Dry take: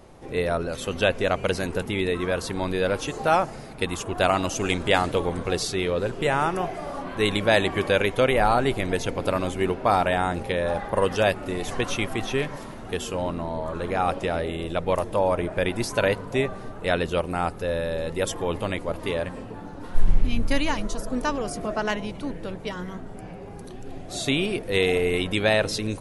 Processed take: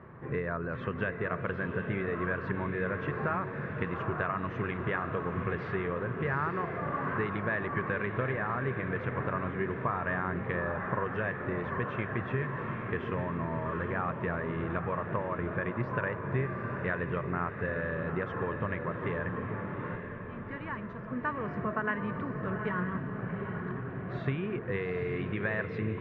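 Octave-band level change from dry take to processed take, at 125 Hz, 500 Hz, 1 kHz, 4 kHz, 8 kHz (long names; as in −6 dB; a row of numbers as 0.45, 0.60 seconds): −3.0 dB, −10.5 dB, −8.0 dB, −24.5 dB, below −40 dB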